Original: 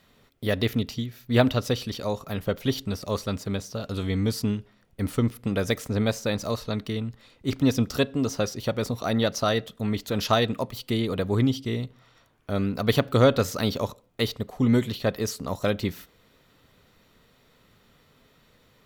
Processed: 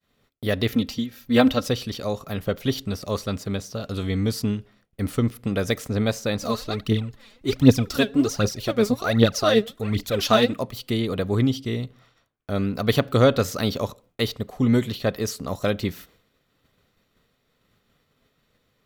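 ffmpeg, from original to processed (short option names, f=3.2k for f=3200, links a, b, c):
-filter_complex "[0:a]asettb=1/sr,asplit=3[a][b][c];[a]atrim=end=0.724[d];[b]atrim=start=0.72:end=1.68,asetpts=PTS-STARTPTS,afade=t=in:d=0.004:c=qsin,afade=t=out:st=0.956:d=0.004:c=qsin,aecho=1:1:3.8:0.7,atrim=end_sample=42336[e];[c]atrim=start=1.676[f];[d][e]acrossfade=d=0.004:c1=hsin:c2=qsin[g];[g][f]acrossfade=d=0.004:c1=qsin:c2=hsin,asplit=3[h][i][j];[h]afade=t=out:st=6.41:d=0.02[k];[i]aphaser=in_gain=1:out_gain=1:delay=5:decay=0.68:speed=1.3:type=triangular,afade=t=in:st=6.41:d=0.02,afade=t=out:st=10.53:d=0.02[l];[j]afade=t=in:st=10.53:d=0.02[m];[k][l][m]amix=inputs=3:normalize=0,bandreject=f=930:w=14,agate=range=-33dB:threshold=-52dB:ratio=3:detection=peak,volume=1.5dB"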